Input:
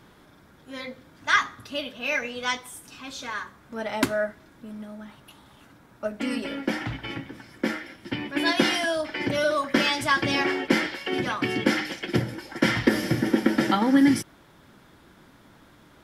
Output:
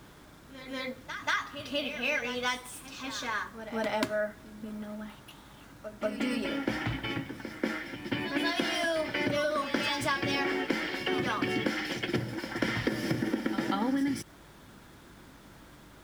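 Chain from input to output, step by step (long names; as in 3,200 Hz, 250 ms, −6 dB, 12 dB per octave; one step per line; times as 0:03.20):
running median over 3 samples
downward compressor 12 to 1, threshold −26 dBFS, peak gain reduction 13 dB
bit reduction 10 bits
mains hum 50 Hz, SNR 27 dB
on a send: backwards echo 187 ms −10.5 dB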